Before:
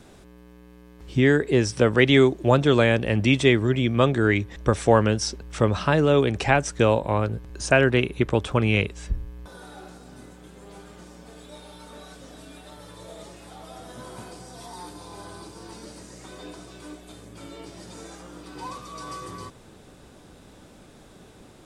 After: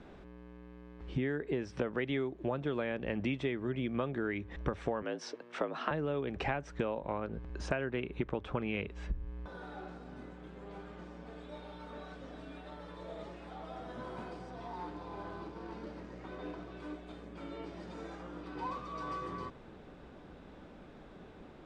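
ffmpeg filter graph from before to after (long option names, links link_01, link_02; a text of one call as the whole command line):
ffmpeg -i in.wav -filter_complex "[0:a]asettb=1/sr,asplit=3[link_01][link_02][link_03];[link_01]atrim=end=5.024[link_04];[link_02]atrim=start=5.02:end=5.91,asetpts=PTS-STARTPTS,afade=type=in:duration=0.004:curve=qsin,afade=type=out:start_time=0.886:duration=0.004:curve=qsin,highpass=260,afreqshift=59[link_05];[link_03]atrim=start=5.906[link_06];[link_04][link_05]acrossfade=duration=0.004:curve1=hsin:curve2=qsin[link_07];[link_07][link_06]acrossfade=duration=0.004:curve1=qsin:curve2=hsin,asettb=1/sr,asplit=3[link_08][link_09][link_10];[link_08]atrim=end=14.504[link_11];[link_09]atrim=start=14.5:end=16.77,asetpts=PTS-STARTPTS,afade=type=in:duration=0.004:curve=qsin,afade=type=out:start_time=2.266:duration=0.004:curve=qsin,aemphasis=mode=reproduction:type=50fm,acrusher=bits=3:mode=log:mix=0:aa=0.000001[link_12];[link_10]atrim=start=16.766[link_13];[link_11][link_12]acrossfade=duration=0.004:curve1=hsin:curve2=qsin[link_14];[link_14][link_13]acrossfade=duration=0.004:curve1=qsin:curve2=hsin,lowpass=2500,equalizer=frequency=110:width_type=o:width=0.22:gain=-14,acompressor=threshold=-28dB:ratio=12,volume=-2.5dB" out.wav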